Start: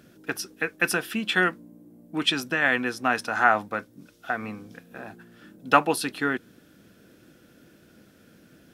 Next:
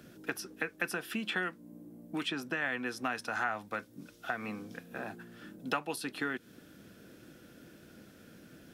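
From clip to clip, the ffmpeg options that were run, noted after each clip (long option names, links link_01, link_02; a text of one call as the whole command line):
ffmpeg -i in.wav -filter_complex "[0:a]acrossover=split=160|2100[link_01][link_02][link_03];[link_01]acompressor=threshold=-56dB:ratio=4[link_04];[link_02]acompressor=threshold=-35dB:ratio=4[link_05];[link_03]acompressor=threshold=-42dB:ratio=4[link_06];[link_04][link_05][link_06]amix=inputs=3:normalize=0" out.wav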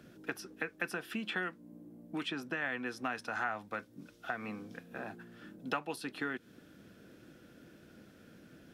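ffmpeg -i in.wav -af "highshelf=frequency=5900:gain=-7,volume=-2dB" out.wav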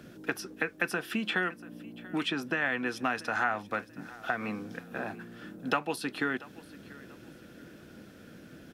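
ffmpeg -i in.wav -af "aecho=1:1:686|1372|2058:0.1|0.032|0.0102,volume=6.5dB" out.wav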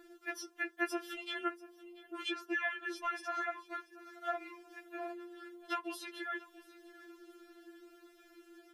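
ffmpeg -i in.wav -af "afftfilt=real='re*4*eq(mod(b,16),0)':imag='im*4*eq(mod(b,16),0)':win_size=2048:overlap=0.75,volume=-4.5dB" out.wav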